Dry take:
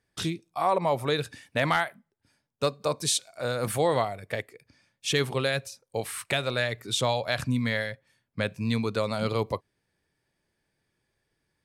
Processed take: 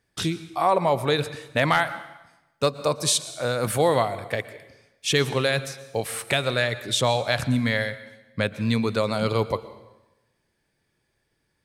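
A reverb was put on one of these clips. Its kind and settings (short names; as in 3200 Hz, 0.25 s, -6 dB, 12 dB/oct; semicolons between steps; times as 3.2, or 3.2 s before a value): plate-style reverb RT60 1 s, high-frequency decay 0.9×, pre-delay 0.105 s, DRR 14.5 dB; gain +4 dB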